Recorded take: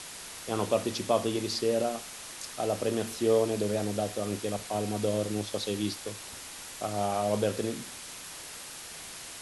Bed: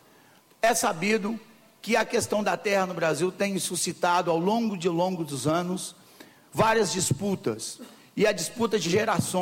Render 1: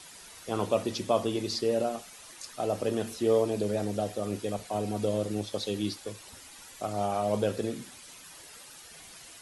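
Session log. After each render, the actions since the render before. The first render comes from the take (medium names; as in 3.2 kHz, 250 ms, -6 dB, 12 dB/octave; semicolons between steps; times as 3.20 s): noise reduction 10 dB, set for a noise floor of -44 dBFS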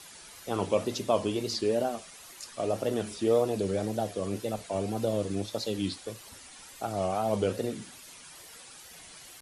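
wow and flutter 140 cents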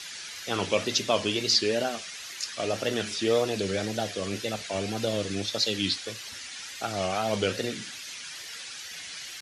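high-pass 53 Hz; high-order bell 3.1 kHz +12 dB 2.5 oct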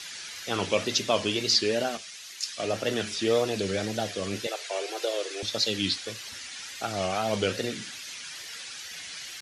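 1.97–3.16 s: three bands expanded up and down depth 40%; 4.47–5.43 s: steep high-pass 340 Hz 72 dB/octave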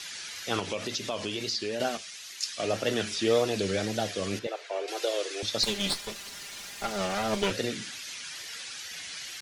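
0.59–1.80 s: compression 3:1, threshold -30 dBFS; 4.39–4.88 s: low-pass 1.4 kHz 6 dB/octave; 5.63–7.51 s: comb filter that takes the minimum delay 5 ms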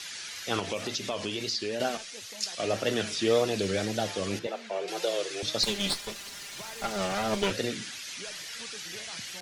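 add bed -24.5 dB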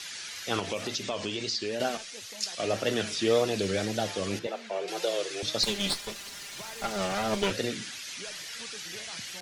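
1.03–1.67 s: brick-wall FIR low-pass 9.3 kHz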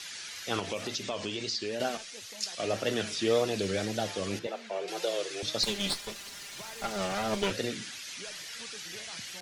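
trim -2 dB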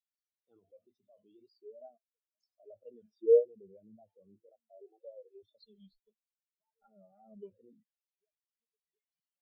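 in parallel at -1.5 dB: compressor with a negative ratio -37 dBFS, ratio -0.5; on the sum: spectral contrast expander 4:1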